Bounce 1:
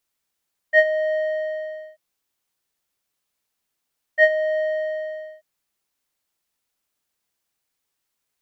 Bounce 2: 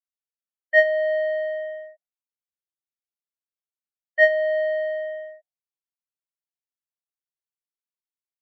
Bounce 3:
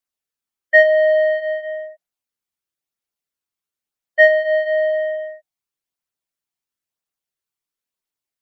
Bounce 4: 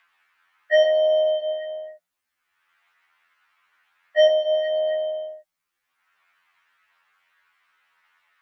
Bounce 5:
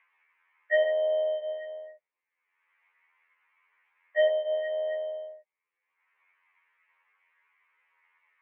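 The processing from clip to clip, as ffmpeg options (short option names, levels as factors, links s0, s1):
-af "afftdn=nr=26:nf=-48"
-af "flanger=delay=0:depth=1:regen=-60:speed=0.99:shape=triangular,alimiter=level_in=4.22:limit=0.891:release=50:level=0:latency=1,volume=0.891"
-filter_complex "[0:a]acrossover=split=1200|2000[s0][s1][s2];[s1]acompressor=mode=upward:threshold=0.00708:ratio=2.5[s3];[s0][s3][s2]amix=inputs=3:normalize=0,afftfilt=real='re*2*eq(mod(b,4),0)':imag='im*2*eq(mod(b,4),0)':win_size=2048:overlap=0.75,volume=2"
-af "highpass=400,equalizer=f=470:t=q:w=4:g=10,equalizer=f=690:t=q:w=4:g=-6,equalizer=f=980:t=q:w=4:g=6,equalizer=f=1400:t=q:w=4:g=-8,equalizer=f=2200:t=q:w=4:g=9,lowpass=f=2500:w=0.5412,lowpass=f=2500:w=1.3066,volume=0.531"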